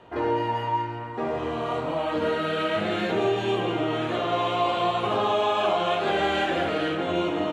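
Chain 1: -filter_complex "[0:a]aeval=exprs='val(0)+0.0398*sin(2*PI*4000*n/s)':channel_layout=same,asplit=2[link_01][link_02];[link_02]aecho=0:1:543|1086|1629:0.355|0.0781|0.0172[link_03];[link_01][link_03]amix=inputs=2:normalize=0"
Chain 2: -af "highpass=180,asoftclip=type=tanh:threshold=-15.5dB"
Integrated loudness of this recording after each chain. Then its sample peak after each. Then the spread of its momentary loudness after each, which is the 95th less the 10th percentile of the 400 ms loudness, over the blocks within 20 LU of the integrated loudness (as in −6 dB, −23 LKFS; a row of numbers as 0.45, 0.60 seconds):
−22.0, −26.5 LKFS; −10.0, −16.5 dBFS; 2, 5 LU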